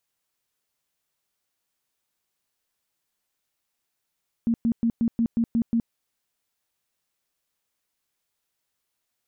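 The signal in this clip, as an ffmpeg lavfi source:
-f lavfi -i "aevalsrc='0.119*sin(2*PI*231*mod(t,0.18))*lt(mod(t,0.18),16/231)':d=1.44:s=44100"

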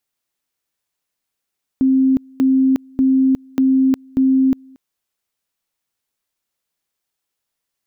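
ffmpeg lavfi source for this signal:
-f lavfi -i "aevalsrc='pow(10,(-10.5-29.5*gte(mod(t,0.59),0.36))/20)*sin(2*PI*264*t)':d=2.95:s=44100"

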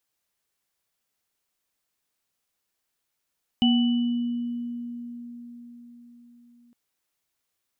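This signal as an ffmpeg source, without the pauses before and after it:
-f lavfi -i "aevalsrc='0.15*pow(10,-3*t/4.9)*sin(2*PI*239*t)+0.0316*pow(10,-3*t/0.83)*sin(2*PI*759*t)+0.075*pow(10,-3*t/1.39)*sin(2*PI*2970*t)':d=3.11:s=44100"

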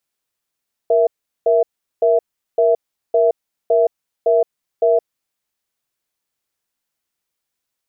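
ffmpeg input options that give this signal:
-f lavfi -i "aevalsrc='0.211*(sin(2*PI*470*t)+sin(2*PI*661*t))*clip(min(mod(t,0.56),0.17-mod(t,0.56))/0.005,0,1)':d=4.34:s=44100"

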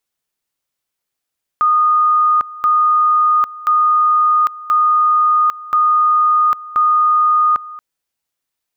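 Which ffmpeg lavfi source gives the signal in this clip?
-f lavfi -i "aevalsrc='pow(10,(-9.5-19*gte(mod(t,1.03),0.8))/20)*sin(2*PI*1230*t)':d=6.18:s=44100"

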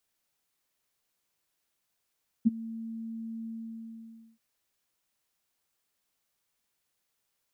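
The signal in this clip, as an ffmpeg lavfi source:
-f lavfi -i "aevalsrc='0.168*sin(2*PI*226*t)':d=1.931:s=44100,afade=t=in:d=0.021,afade=t=out:st=0.021:d=0.022:silence=0.1,afade=t=out:st=1.01:d=0.921"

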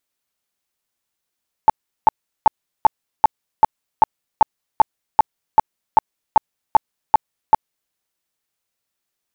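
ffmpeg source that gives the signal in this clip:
-f lavfi -i "aevalsrc='0.562*sin(2*PI*875*mod(t,0.39))*lt(mod(t,0.39),15/875)':d=6.24:s=44100"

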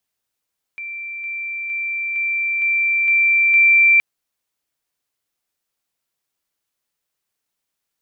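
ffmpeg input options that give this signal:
-f lavfi -i "aevalsrc='pow(10,(-27+3*floor(t/0.46))/20)*sin(2*PI*2350*t)':d=3.22:s=44100"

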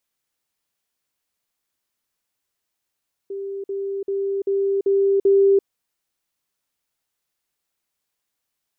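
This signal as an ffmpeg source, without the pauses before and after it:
-f lavfi -i "aevalsrc='pow(10,(-26.5+3*floor(t/0.39))/20)*sin(2*PI*394*t)*clip(min(mod(t,0.39),0.34-mod(t,0.39))/0.005,0,1)':d=2.34:s=44100"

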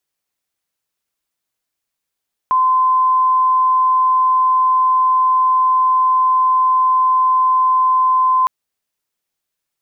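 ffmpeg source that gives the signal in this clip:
-f lavfi -i "sine=f=1030:d=5.96:r=44100,volume=7.56dB"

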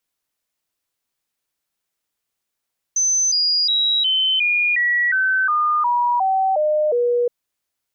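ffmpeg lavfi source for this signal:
-f lavfi -i "aevalsrc='0.178*clip(min(mod(t,0.36),0.36-mod(t,0.36))/0.005,0,1)*sin(2*PI*6130*pow(2,-floor(t/0.36)/3)*mod(t,0.36))':d=4.32:s=44100"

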